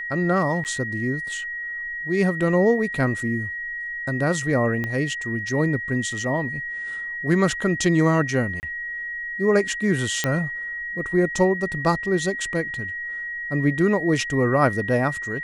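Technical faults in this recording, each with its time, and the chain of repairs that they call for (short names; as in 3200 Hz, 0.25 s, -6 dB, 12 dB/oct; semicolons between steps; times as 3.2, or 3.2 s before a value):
tone 1900 Hz -28 dBFS
0.64–0.65 gap 9.1 ms
4.84 pop -15 dBFS
8.6–8.63 gap 29 ms
10.24 pop -7 dBFS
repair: de-click; notch 1900 Hz, Q 30; interpolate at 0.64, 9.1 ms; interpolate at 8.6, 29 ms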